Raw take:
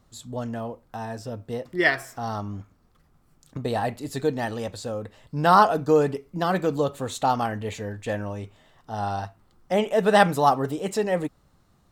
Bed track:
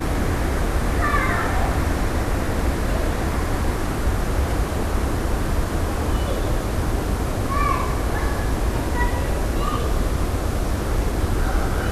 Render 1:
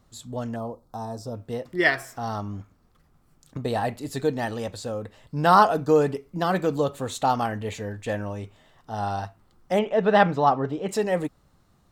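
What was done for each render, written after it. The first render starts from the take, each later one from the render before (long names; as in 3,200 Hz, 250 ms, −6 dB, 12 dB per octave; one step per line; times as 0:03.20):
0:00.56–0:01.35: flat-topped bell 2,200 Hz −16 dB 1.2 octaves
0:09.79–0:10.89: high-frequency loss of the air 190 metres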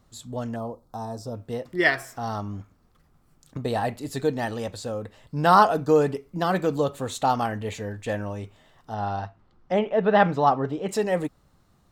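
0:08.94–0:10.24: high-frequency loss of the air 140 metres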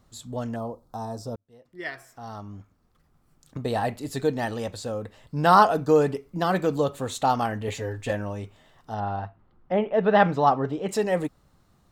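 0:01.36–0:03.82: fade in
0:07.67–0:08.11: comb filter 7.4 ms, depth 73%
0:09.00–0:09.94: high-frequency loss of the air 270 metres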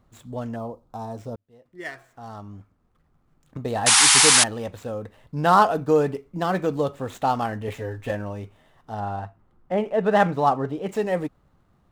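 running median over 9 samples
0:03.86–0:04.44: sound drawn into the spectrogram noise 740–11,000 Hz −15 dBFS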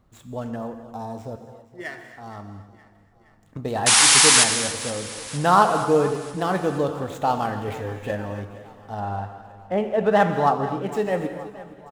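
repeating echo 469 ms, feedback 59%, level −18 dB
reverb whose tail is shaped and stops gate 310 ms flat, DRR 7 dB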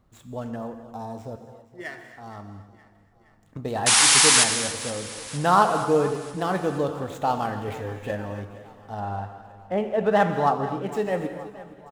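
level −2 dB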